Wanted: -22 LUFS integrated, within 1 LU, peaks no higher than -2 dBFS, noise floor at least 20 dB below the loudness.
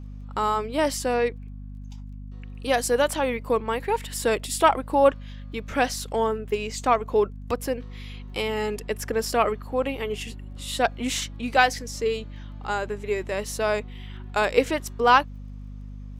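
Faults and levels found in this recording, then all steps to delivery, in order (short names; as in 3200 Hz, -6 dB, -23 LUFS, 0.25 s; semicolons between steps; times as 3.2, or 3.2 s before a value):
ticks 17/s; hum 50 Hz; harmonics up to 250 Hz; hum level -35 dBFS; loudness -25.0 LUFS; peak -4.0 dBFS; loudness target -22.0 LUFS
-> de-click; notches 50/100/150/200/250 Hz; gain +3 dB; limiter -2 dBFS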